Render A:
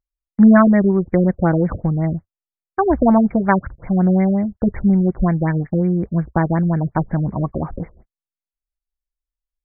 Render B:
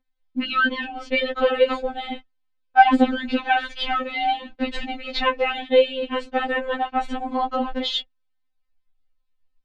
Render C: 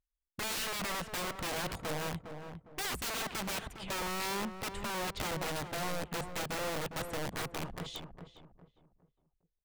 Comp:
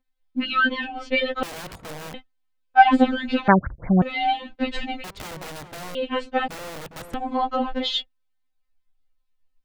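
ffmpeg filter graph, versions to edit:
-filter_complex "[2:a]asplit=3[a][b][c];[1:a]asplit=5[d][e][f][g][h];[d]atrim=end=1.432[i];[a]atrim=start=1.428:end=2.142[j];[e]atrim=start=2.138:end=3.482[k];[0:a]atrim=start=3.478:end=4.022[l];[f]atrim=start=4.018:end=5.042[m];[b]atrim=start=5.038:end=5.952[n];[g]atrim=start=5.948:end=6.482[o];[c]atrim=start=6.478:end=7.142[p];[h]atrim=start=7.138[q];[i][j]acrossfade=d=0.004:c1=hsin:c2=hsin[r];[r][k]acrossfade=d=0.004:c1=hsin:c2=hsin[s];[s][l]acrossfade=d=0.004:c1=hsin:c2=hsin[t];[t][m]acrossfade=d=0.004:c1=hsin:c2=hsin[u];[u][n]acrossfade=d=0.004:c1=hsin:c2=hsin[v];[v][o]acrossfade=d=0.004:c1=hsin:c2=hsin[w];[w][p]acrossfade=d=0.004:c1=hsin:c2=hsin[x];[x][q]acrossfade=d=0.004:c1=hsin:c2=hsin"

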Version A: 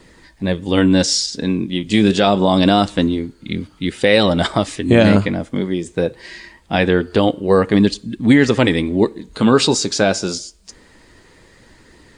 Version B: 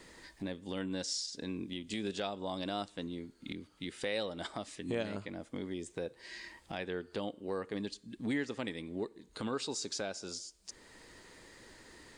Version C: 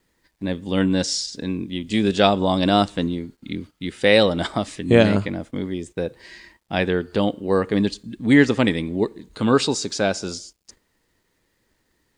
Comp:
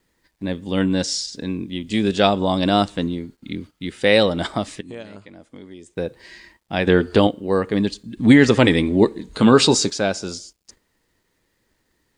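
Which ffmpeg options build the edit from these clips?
-filter_complex "[0:a]asplit=2[a][b];[2:a]asplit=4[c][d][e][f];[c]atrim=end=4.812[g];[1:a]atrim=start=4.808:end=5.942[h];[d]atrim=start=5.938:end=6.872[i];[a]atrim=start=6.868:end=7.272[j];[e]atrim=start=7.268:end=8.172[k];[b]atrim=start=8.168:end=9.902[l];[f]atrim=start=9.898[m];[g][h]acrossfade=d=0.004:c1=hsin:c2=hsin[n];[n][i]acrossfade=d=0.004:c1=hsin:c2=hsin[o];[o][j]acrossfade=d=0.004:c1=hsin:c2=hsin[p];[p][k]acrossfade=d=0.004:c1=hsin:c2=hsin[q];[q][l]acrossfade=d=0.004:c1=hsin:c2=hsin[r];[r][m]acrossfade=d=0.004:c1=hsin:c2=hsin"

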